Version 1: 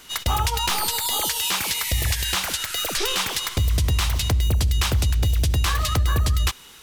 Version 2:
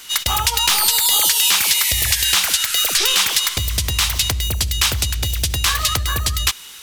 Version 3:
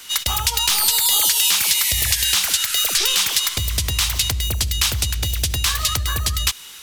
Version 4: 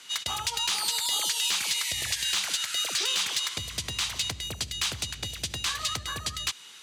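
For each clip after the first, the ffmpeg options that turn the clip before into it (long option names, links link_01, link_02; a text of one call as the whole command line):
ffmpeg -i in.wav -af "tiltshelf=frequency=1200:gain=-6.5,volume=3.5dB" out.wav
ffmpeg -i in.wav -filter_complex "[0:a]acrossover=split=190|3000[link_01][link_02][link_03];[link_02]acompressor=threshold=-26dB:ratio=2.5[link_04];[link_01][link_04][link_03]amix=inputs=3:normalize=0,volume=-1dB" out.wav
ffmpeg -i in.wav -af "highpass=140,lowpass=7600,asoftclip=type=hard:threshold=-12dB,bandreject=frequency=5400:width=19,volume=-7.5dB" out.wav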